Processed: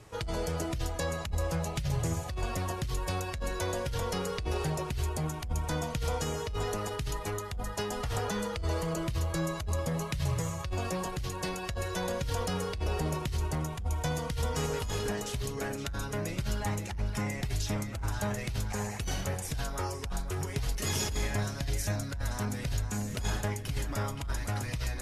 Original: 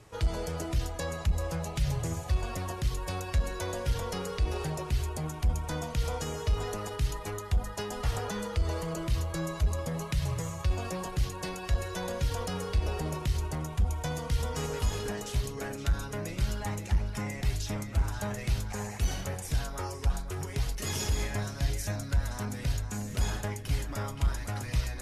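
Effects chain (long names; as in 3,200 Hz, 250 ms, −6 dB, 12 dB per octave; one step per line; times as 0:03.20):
compressor whose output falls as the input rises −30 dBFS, ratio −1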